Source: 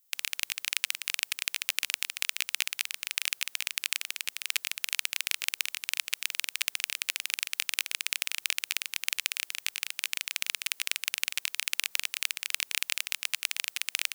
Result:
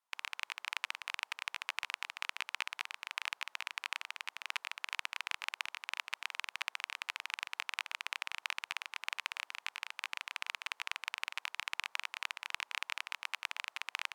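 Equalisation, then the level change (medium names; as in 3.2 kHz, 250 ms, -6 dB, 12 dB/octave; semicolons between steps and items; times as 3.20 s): band-pass filter 960 Hz, Q 2.6; +8.5 dB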